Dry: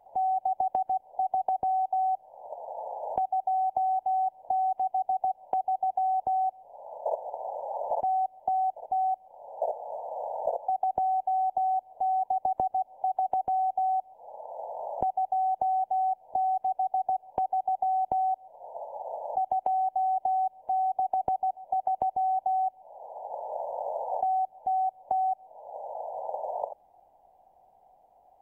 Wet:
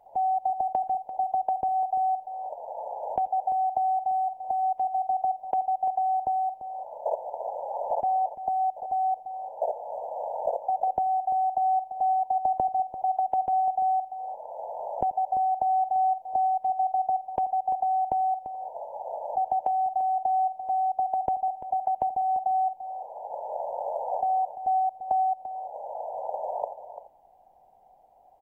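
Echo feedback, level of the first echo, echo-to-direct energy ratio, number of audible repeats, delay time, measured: no regular repeats, -22.0 dB, -11.0 dB, 3, 85 ms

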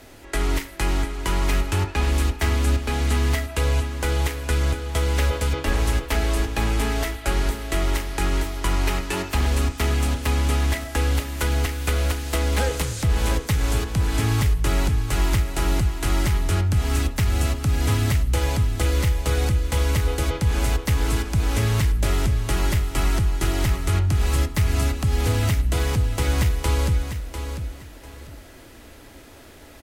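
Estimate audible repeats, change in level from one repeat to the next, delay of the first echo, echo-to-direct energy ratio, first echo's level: 2, -12.0 dB, 697 ms, -8.5 dB, -9.0 dB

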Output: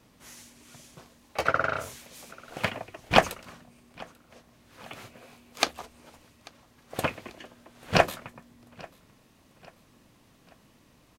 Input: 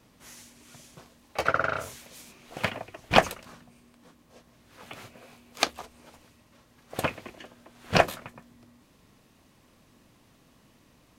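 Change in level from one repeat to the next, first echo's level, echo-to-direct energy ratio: -7.0 dB, -24.0 dB, -23.0 dB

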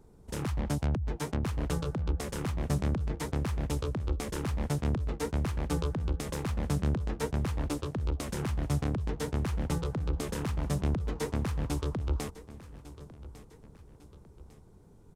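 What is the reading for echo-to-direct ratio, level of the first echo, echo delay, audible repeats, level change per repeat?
-16.0 dB, -17.0 dB, 1151 ms, 2, -7.0 dB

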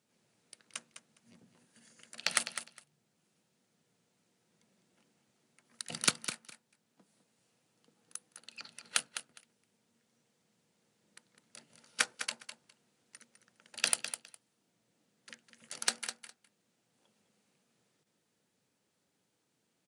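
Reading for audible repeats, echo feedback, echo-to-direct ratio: 2, 16%, -10.0 dB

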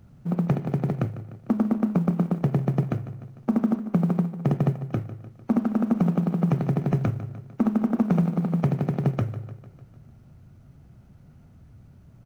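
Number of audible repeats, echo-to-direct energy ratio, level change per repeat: 5, -13.0 dB, -5.0 dB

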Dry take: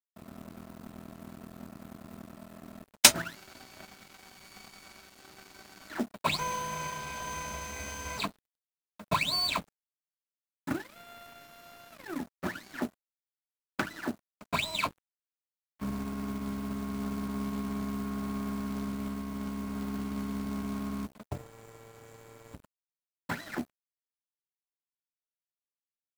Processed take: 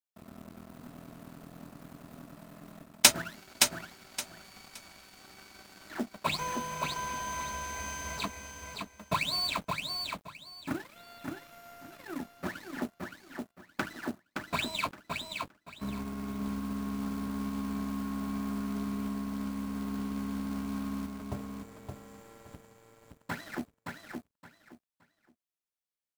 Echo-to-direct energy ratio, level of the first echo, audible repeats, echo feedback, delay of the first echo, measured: -4.5 dB, -4.5 dB, 3, 23%, 569 ms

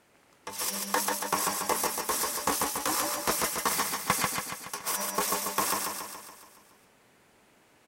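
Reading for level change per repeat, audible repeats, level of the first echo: -5.0 dB, 7, -3.0 dB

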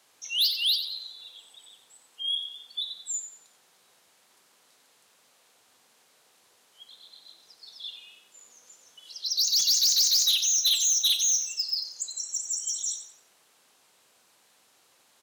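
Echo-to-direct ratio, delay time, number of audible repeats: -9.5 dB, 91 ms, 3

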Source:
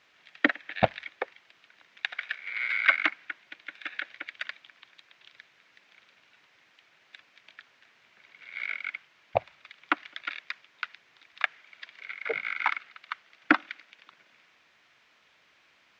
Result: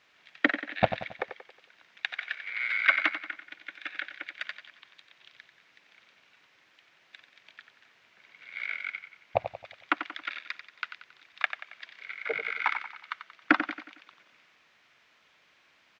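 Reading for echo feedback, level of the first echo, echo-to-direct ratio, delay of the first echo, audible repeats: 46%, -10.0 dB, -9.0 dB, 91 ms, 4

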